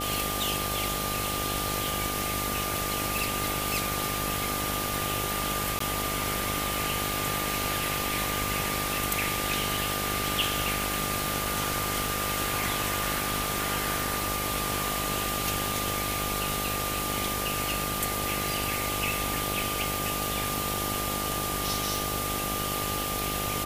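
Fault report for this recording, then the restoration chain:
mains buzz 50 Hz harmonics 17 −35 dBFS
surface crackle 23 per second −37 dBFS
whistle 1,200 Hz −34 dBFS
0:05.79–0:05.80: drop-out 14 ms
0:21.96: click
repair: click removal
hum removal 50 Hz, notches 17
notch filter 1,200 Hz, Q 30
repair the gap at 0:05.79, 14 ms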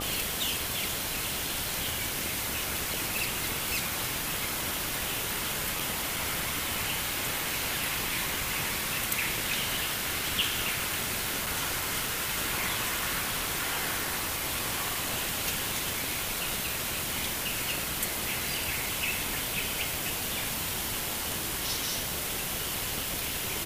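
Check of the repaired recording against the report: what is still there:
none of them is left

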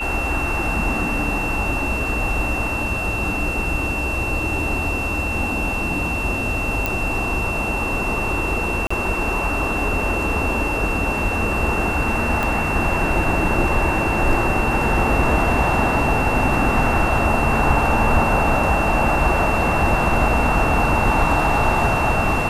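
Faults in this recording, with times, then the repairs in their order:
whistle 2,700 Hz −24 dBFS
0:06.86: click
0:08.87–0:08.90: drop-out 35 ms
0:12.43: click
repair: click removal
notch filter 2,700 Hz, Q 30
repair the gap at 0:08.87, 35 ms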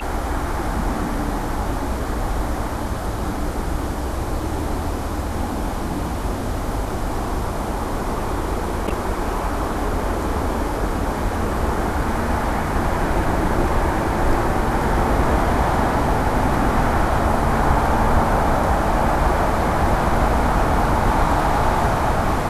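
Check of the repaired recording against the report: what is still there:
0:12.43: click

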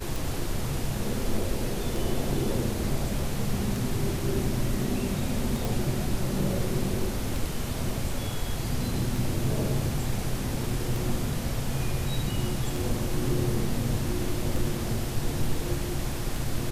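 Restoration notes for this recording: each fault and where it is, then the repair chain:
scratch tick 33 1/3 rpm
0:05.65: click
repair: click removal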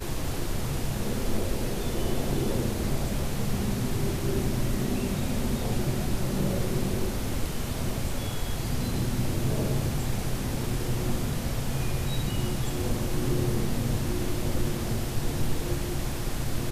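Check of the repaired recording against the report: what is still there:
none of them is left

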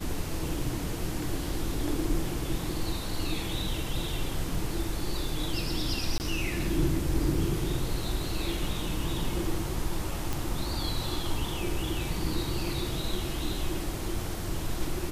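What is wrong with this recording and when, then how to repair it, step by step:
0:06.18–0:06.20: drop-out 19 ms
0:10.33: click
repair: click removal
repair the gap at 0:06.18, 19 ms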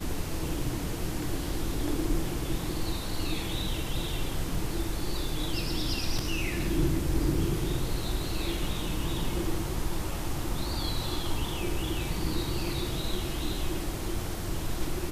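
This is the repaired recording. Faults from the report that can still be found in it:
none of them is left

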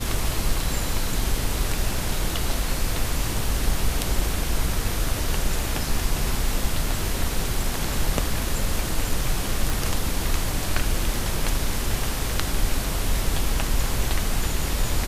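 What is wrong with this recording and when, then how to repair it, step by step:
0:09.70: click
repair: click removal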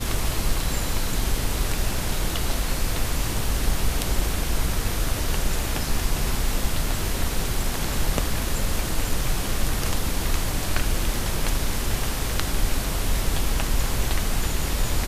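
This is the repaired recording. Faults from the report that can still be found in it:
none of them is left

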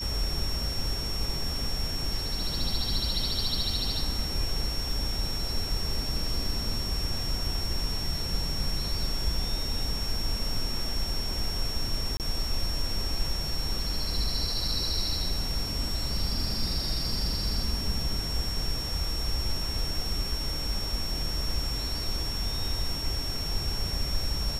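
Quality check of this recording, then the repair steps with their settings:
whistle 5,500 Hz −33 dBFS
0:12.17–0:12.20: drop-out 28 ms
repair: notch filter 5,500 Hz, Q 30
repair the gap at 0:12.17, 28 ms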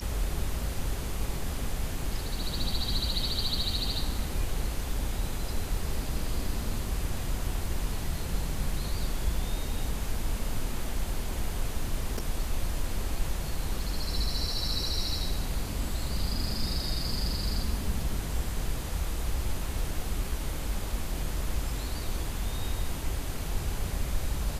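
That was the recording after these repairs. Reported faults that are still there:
none of them is left

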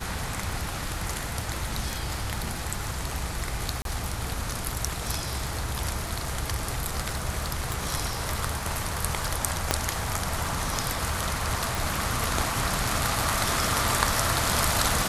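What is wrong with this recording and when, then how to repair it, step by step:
surface crackle 27 per second −34 dBFS
0:03.82–0:03.85: drop-out 32 ms
0:07.72: click
0:09.71: click −5 dBFS
0:11.75: click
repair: click removal
repair the gap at 0:03.82, 32 ms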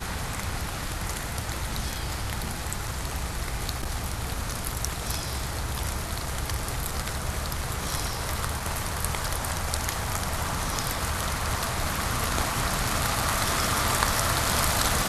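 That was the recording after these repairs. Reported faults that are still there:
0:07.72: click

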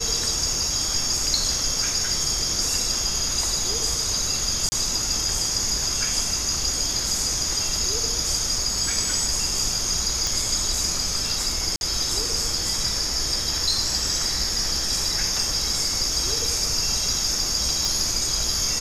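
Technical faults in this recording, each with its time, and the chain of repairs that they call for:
0:04.69–0:04.72: drop-out 30 ms
0:10.27: click
0:11.76–0:11.81: drop-out 51 ms
0:17.85: click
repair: click removal
repair the gap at 0:04.69, 30 ms
repair the gap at 0:11.76, 51 ms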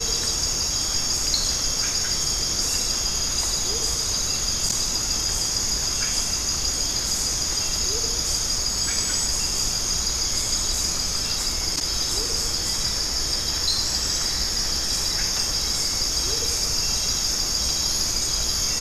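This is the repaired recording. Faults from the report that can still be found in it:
none of them is left

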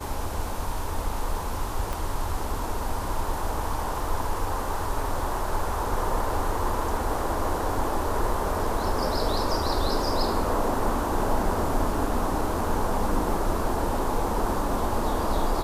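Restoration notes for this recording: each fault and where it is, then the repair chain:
0:01.93: click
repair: click removal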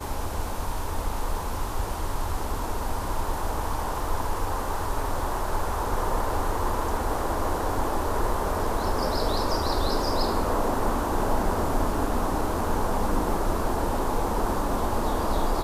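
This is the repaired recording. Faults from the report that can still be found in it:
0:01.93: click

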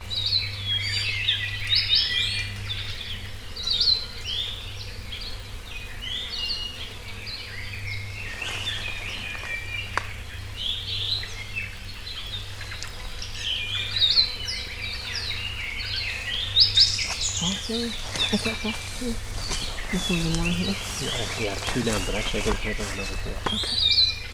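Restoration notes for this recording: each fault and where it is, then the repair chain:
surface crackle 54 per second −35 dBFS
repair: click removal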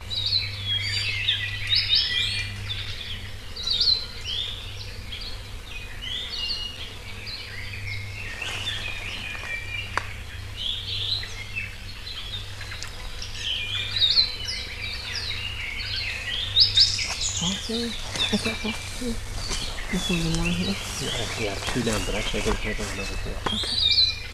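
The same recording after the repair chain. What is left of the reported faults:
none of them is left

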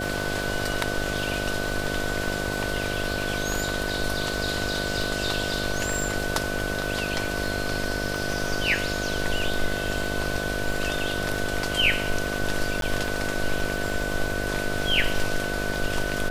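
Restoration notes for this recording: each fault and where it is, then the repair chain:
mains buzz 50 Hz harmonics 14 −31 dBFS
surface crackle 51 per second −33 dBFS
whistle 1,500 Hz −31 dBFS
0:12.81–0:12.82: drop-out 12 ms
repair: click removal
notch filter 1,500 Hz, Q 30
hum removal 50 Hz, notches 14
repair the gap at 0:12.81, 12 ms

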